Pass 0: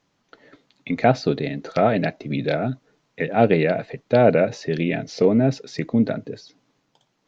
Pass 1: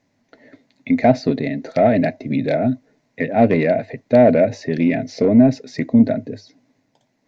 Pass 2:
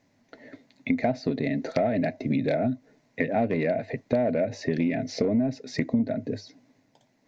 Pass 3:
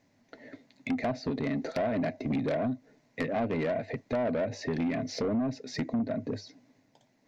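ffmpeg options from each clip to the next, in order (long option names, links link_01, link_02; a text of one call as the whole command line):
ffmpeg -i in.wav -af "acontrast=71,equalizer=frequency=100:width_type=o:width=0.33:gain=10,equalizer=frequency=250:width_type=o:width=0.33:gain=12,equalizer=frequency=630:width_type=o:width=0.33:gain=8,equalizer=frequency=1250:width_type=o:width=0.33:gain=-9,equalizer=frequency=2000:width_type=o:width=0.33:gain=7,equalizer=frequency=3150:width_type=o:width=0.33:gain=-7,volume=-7dB" out.wav
ffmpeg -i in.wav -af "acompressor=threshold=-22dB:ratio=6" out.wav
ffmpeg -i in.wav -af "asoftclip=type=tanh:threshold=-22.5dB,volume=-1.5dB" out.wav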